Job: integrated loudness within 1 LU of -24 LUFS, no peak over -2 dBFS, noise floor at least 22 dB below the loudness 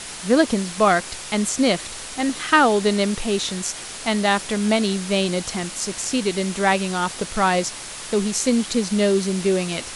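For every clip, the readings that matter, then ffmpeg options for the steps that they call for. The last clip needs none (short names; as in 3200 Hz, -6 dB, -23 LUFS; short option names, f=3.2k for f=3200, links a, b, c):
noise floor -35 dBFS; noise floor target -43 dBFS; loudness -21.0 LUFS; peak -3.0 dBFS; loudness target -24.0 LUFS
-> -af "afftdn=nr=8:nf=-35"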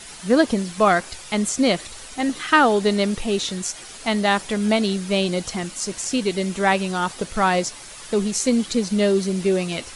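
noise floor -39 dBFS; noise floor target -44 dBFS
-> -af "afftdn=nr=6:nf=-39"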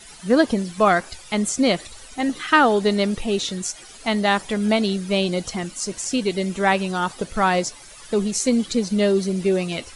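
noise floor -43 dBFS; noise floor target -44 dBFS
-> -af "afftdn=nr=6:nf=-43"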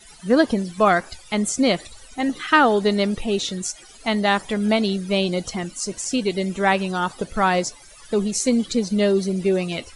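noise floor -46 dBFS; loudness -21.5 LUFS; peak -3.0 dBFS; loudness target -24.0 LUFS
-> -af "volume=-2.5dB"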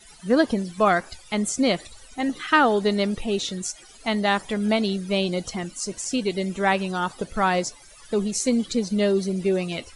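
loudness -24.0 LUFS; peak -5.5 dBFS; noise floor -48 dBFS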